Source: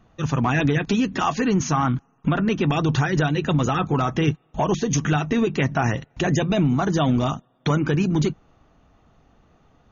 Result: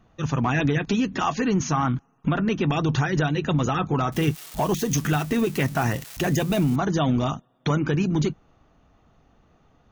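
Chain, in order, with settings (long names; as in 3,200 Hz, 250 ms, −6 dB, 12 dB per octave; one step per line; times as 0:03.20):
0:04.12–0:06.76: spike at every zero crossing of −24.5 dBFS
level −2 dB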